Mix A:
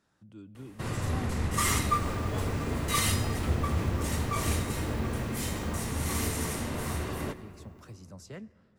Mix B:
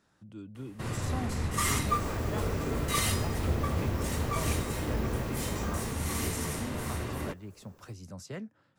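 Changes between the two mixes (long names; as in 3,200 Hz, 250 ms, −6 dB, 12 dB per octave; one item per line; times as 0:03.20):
speech +4.0 dB
second sound +5.5 dB
reverb: off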